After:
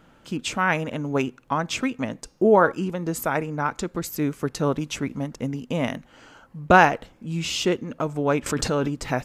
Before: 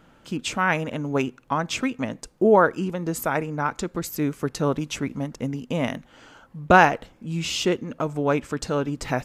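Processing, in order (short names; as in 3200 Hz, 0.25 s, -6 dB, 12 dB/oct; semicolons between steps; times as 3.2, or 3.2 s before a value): 2.19–2.72 de-hum 276.2 Hz, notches 24; 5.95–6.7 notch 3500 Hz, Q 13; 8.46–8.88 fast leveller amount 70%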